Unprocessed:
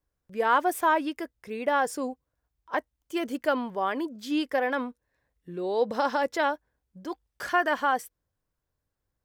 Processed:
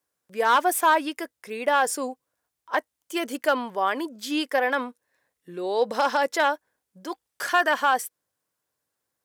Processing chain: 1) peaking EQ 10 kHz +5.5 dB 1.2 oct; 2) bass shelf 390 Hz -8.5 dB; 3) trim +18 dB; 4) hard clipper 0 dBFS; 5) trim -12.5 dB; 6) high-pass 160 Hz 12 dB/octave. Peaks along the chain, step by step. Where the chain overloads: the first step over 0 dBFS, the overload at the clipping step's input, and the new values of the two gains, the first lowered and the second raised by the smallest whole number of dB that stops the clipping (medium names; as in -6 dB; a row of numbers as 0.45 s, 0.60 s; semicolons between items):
-10.5 dBFS, -12.0 dBFS, +6.0 dBFS, 0.0 dBFS, -12.5 dBFS, -10.0 dBFS; step 3, 6.0 dB; step 3 +12 dB, step 5 -6.5 dB